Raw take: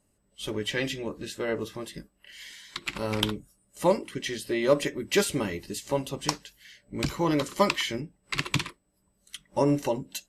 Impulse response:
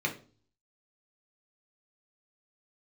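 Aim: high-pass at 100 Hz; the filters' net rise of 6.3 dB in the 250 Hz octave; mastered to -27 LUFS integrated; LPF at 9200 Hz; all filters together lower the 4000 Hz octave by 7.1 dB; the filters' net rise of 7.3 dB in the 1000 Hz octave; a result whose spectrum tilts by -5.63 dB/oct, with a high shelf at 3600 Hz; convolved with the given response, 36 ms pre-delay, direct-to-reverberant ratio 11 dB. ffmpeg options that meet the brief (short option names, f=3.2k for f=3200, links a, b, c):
-filter_complex "[0:a]highpass=100,lowpass=9.2k,equalizer=f=250:t=o:g=8,equalizer=f=1k:t=o:g=8.5,highshelf=f=3.6k:g=-6,equalizer=f=4k:t=o:g=-6.5,asplit=2[a][b];[1:a]atrim=start_sample=2205,adelay=36[c];[b][c]afir=irnorm=-1:irlink=0,volume=-18.5dB[d];[a][d]amix=inputs=2:normalize=0,volume=-2.5dB"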